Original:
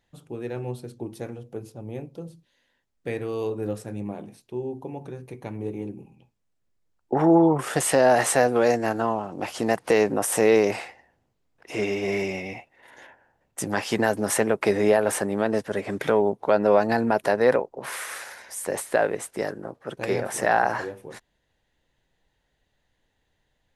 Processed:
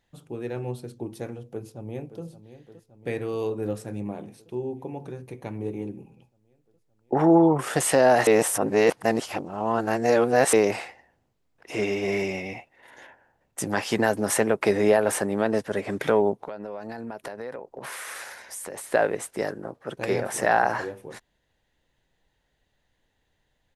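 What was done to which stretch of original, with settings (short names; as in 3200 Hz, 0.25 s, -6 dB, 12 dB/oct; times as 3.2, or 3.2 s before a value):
1.43–2.22 echo throw 0.57 s, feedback 75%, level -13.5 dB
8.27–10.53 reverse
16.35–18.84 compressor 8:1, threshold -32 dBFS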